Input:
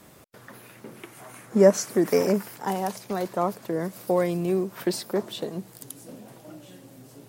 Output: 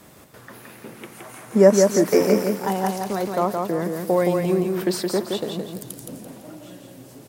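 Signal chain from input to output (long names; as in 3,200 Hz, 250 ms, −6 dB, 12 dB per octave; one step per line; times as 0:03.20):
0:05.75–0:06.18: low-shelf EQ 160 Hz +8.5 dB
repeating echo 169 ms, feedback 34%, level −4 dB
level +3 dB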